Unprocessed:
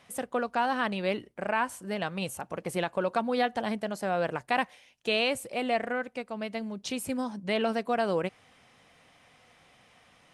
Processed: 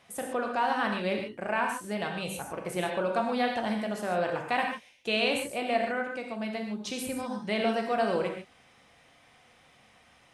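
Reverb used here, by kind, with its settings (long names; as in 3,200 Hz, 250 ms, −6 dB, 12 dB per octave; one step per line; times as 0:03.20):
reverb whose tail is shaped and stops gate 170 ms flat, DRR 1.5 dB
level −2 dB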